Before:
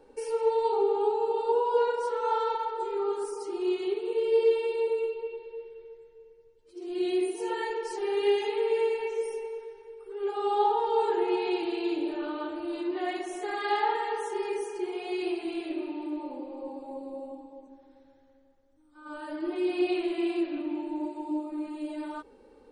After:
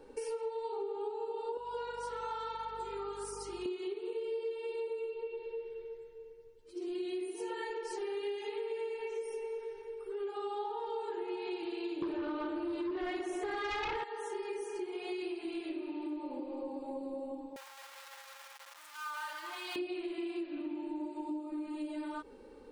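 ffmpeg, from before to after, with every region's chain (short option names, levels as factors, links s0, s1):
-filter_complex "[0:a]asettb=1/sr,asplit=3[s0][s1][s2];[s0]atrim=end=1.574[s3];[s1]atrim=start=1.57:end=3.66,asetpts=PTS-STARTPTS,afade=t=in:d=0.004:c=qsin,afade=t=out:st=2.086:d=0.004:c=qsin,highpass=f=1200:p=1,aeval=exprs='val(0)+0.00158*(sin(2*PI*50*n/s)+sin(2*PI*2*50*n/s)/2+sin(2*PI*3*50*n/s)/3+sin(2*PI*4*50*n/s)/4+sin(2*PI*5*50*n/s)/5)':c=same[s4];[s2]atrim=start=3.656[s5];[s3][s4]acrossfade=d=0.004:c1=hsin:c2=qsin[s6];[s6][s5]acrossfade=d=0.004:c1=qsin:c2=hsin,asettb=1/sr,asplit=3[s7][s8][s9];[s7]atrim=end=12.024[s10];[s8]atrim=start=12.02:end=14.04,asetpts=PTS-STARTPTS,afade=t=in:d=0.004:c=qsin,afade=t=out:st=2.016:d=0.004:c=qsin,highshelf=f=2400:g=-6.5,aeval=exprs='0.158*sin(PI/2*3.16*val(0)/0.158)':c=same[s11];[s9]atrim=start=14.036[s12];[s10][s11]acrossfade=d=0.004:c1=hsin:c2=qsin[s13];[s13][s12]acrossfade=d=0.004:c1=qsin:c2=hsin,asettb=1/sr,asplit=3[s14][s15][s16];[s14]atrim=end=17.564[s17];[s15]atrim=start=17.56:end=19.76,asetpts=PTS-STARTPTS,afade=t=in:d=0.004:c=qsin,afade=t=out:st=2.196:d=0.004:c=qsin,aeval=exprs='val(0)+0.5*0.0075*sgn(val(0))':c=same,highpass=f=830:w=0.5412,highpass=f=830:w=1.3066,aecho=1:1:5.8:0.44,atrim=end_sample=97020[s18];[s16]atrim=start=19.756[s19];[s17][s18]acrossfade=d=0.004:c1=hsin:c2=qsin[s20];[s20][s19]acrossfade=d=0.004:c1=qsin:c2=hsin,equalizer=f=710:t=o:w=0.52:g=-5,acompressor=threshold=0.0112:ratio=6,volume=1.33"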